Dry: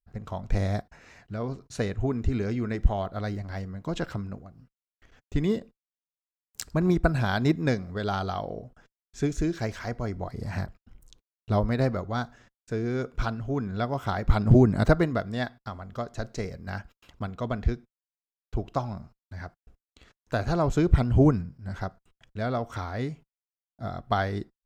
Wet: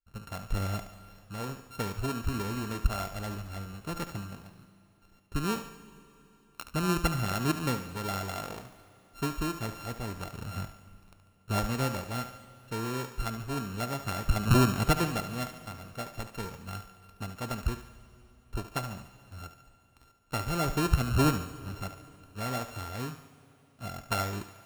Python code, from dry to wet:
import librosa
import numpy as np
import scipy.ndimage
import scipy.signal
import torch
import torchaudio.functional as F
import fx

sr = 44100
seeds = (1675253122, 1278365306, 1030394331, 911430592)

y = np.r_[np.sort(x[:len(x) // 32 * 32].reshape(-1, 32), axis=1).ravel(), x[len(x) // 32 * 32:]]
y = fx.echo_thinned(y, sr, ms=72, feedback_pct=51, hz=420.0, wet_db=-10.0)
y = fx.rev_schroeder(y, sr, rt60_s=3.4, comb_ms=32, drr_db=15.5)
y = y * 10.0 ** (-5.5 / 20.0)